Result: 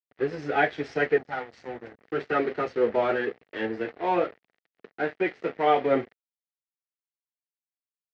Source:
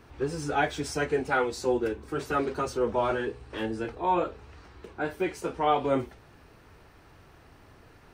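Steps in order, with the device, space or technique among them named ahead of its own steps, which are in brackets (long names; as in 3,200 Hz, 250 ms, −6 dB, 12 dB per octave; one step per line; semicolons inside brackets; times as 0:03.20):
0:01.18–0:02.01: drawn EQ curve 150 Hz 0 dB, 440 Hz −16 dB, 810 Hz −3 dB, 2,600 Hz −17 dB, 6,100 Hz 0 dB
blown loudspeaker (dead-zone distortion −41.5 dBFS; loudspeaker in its box 160–4,100 Hz, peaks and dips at 460 Hz +4 dB, 690 Hz +3 dB, 1,000 Hz −7 dB, 1,900 Hz +9 dB, 3,600 Hz −3 dB)
level +2.5 dB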